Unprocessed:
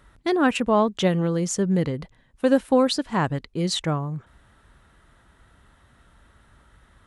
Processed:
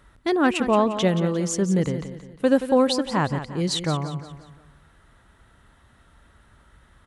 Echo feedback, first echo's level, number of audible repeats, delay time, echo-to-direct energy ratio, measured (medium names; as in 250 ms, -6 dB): 42%, -11.0 dB, 4, 176 ms, -10.0 dB